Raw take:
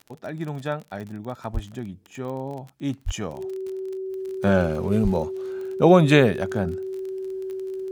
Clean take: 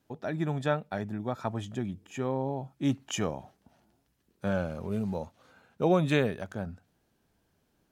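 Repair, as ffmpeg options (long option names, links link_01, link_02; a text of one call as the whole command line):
ffmpeg -i in.wav -filter_complex "[0:a]adeclick=threshold=4,bandreject=frequency=380:width=30,asplit=3[link_01][link_02][link_03];[link_01]afade=type=out:start_time=1.53:duration=0.02[link_04];[link_02]highpass=frequency=140:width=0.5412,highpass=frequency=140:width=1.3066,afade=type=in:start_time=1.53:duration=0.02,afade=type=out:start_time=1.65:duration=0.02[link_05];[link_03]afade=type=in:start_time=1.65:duration=0.02[link_06];[link_04][link_05][link_06]amix=inputs=3:normalize=0,asplit=3[link_07][link_08][link_09];[link_07]afade=type=out:start_time=3.05:duration=0.02[link_10];[link_08]highpass=frequency=140:width=0.5412,highpass=frequency=140:width=1.3066,afade=type=in:start_time=3.05:duration=0.02,afade=type=out:start_time=3.17:duration=0.02[link_11];[link_09]afade=type=in:start_time=3.17:duration=0.02[link_12];[link_10][link_11][link_12]amix=inputs=3:normalize=0,asplit=3[link_13][link_14][link_15];[link_13]afade=type=out:start_time=5.03:duration=0.02[link_16];[link_14]highpass=frequency=140:width=0.5412,highpass=frequency=140:width=1.3066,afade=type=in:start_time=5.03:duration=0.02,afade=type=out:start_time=5.15:duration=0.02[link_17];[link_15]afade=type=in:start_time=5.15:duration=0.02[link_18];[link_16][link_17][link_18]amix=inputs=3:normalize=0,asetnsamples=nb_out_samples=441:pad=0,asendcmd='4.1 volume volume -10dB',volume=0dB" out.wav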